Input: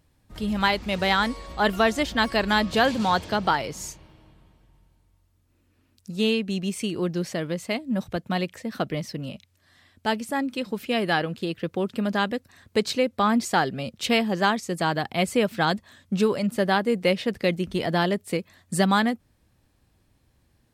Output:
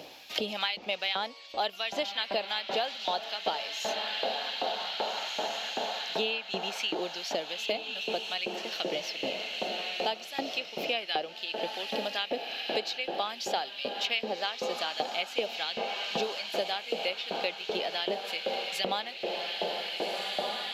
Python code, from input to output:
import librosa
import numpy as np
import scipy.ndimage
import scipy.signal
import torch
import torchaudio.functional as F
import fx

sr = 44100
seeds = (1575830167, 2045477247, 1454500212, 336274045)

y = np.convolve(x, np.full(5, 1.0 / 5))[:len(x)]
y = fx.echo_diffused(y, sr, ms=1649, feedback_pct=51, wet_db=-6.5)
y = fx.filter_lfo_highpass(y, sr, shape='saw_up', hz=2.6, low_hz=480.0, high_hz=2900.0, q=0.91)
y = fx.band_shelf(y, sr, hz=1400.0, db=-13.0, octaves=1.3)
y = fx.band_squash(y, sr, depth_pct=100)